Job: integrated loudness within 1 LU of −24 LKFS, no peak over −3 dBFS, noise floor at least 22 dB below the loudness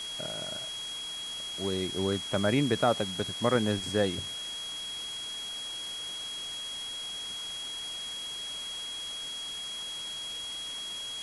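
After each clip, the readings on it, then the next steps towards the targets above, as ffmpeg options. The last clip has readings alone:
interfering tone 3,300 Hz; level of the tone −36 dBFS; background noise floor −38 dBFS; target noise floor −55 dBFS; integrated loudness −32.5 LKFS; sample peak −12.0 dBFS; target loudness −24.0 LKFS
→ -af "bandreject=frequency=3300:width=30"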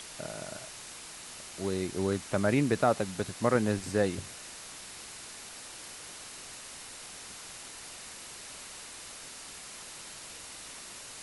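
interfering tone none found; background noise floor −46 dBFS; target noise floor −57 dBFS
→ -af "afftdn=noise_reduction=11:noise_floor=-46"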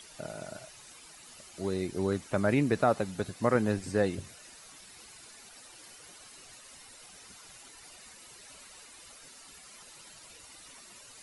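background noise floor −53 dBFS; integrated loudness −30.5 LKFS; sample peak −12.0 dBFS; target loudness −24.0 LKFS
→ -af "volume=6.5dB"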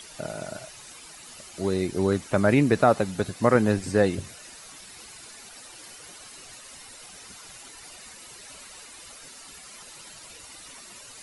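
integrated loudness −24.0 LKFS; sample peak −5.5 dBFS; background noise floor −46 dBFS

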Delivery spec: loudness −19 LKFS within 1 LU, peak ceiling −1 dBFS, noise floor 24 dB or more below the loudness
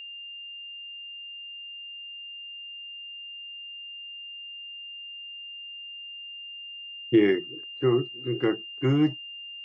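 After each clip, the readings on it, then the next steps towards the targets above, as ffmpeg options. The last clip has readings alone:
interfering tone 2,800 Hz; level of the tone −38 dBFS; integrated loudness −31.0 LKFS; sample peak −10.0 dBFS; target loudness −19.0 LKFS
→ -af "bandreject=frequency=2800:width=30"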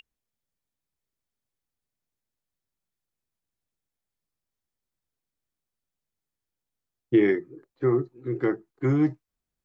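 interfering tone none found; integrated loudness −25.5 LKFS; sample peak −10.5 dBFS; target loudness −19.0 LKFS
→ -af "volume=6.5dB"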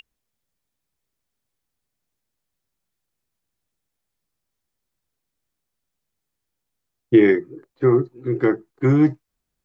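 integrated loudness −19.0 LKFS; sample peak −4.0 dBFS; background noise floor −81 dBFS

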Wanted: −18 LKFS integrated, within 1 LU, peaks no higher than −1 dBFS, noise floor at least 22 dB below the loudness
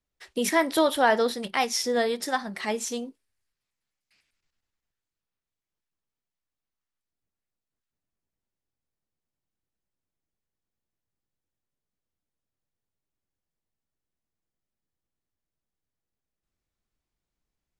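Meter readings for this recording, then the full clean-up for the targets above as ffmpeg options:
integrated loudness −25.5 LKFS; sample peak −9.0 dBFS; target loudness −18.0 LKFS
→ -af "volume=7.5dB"

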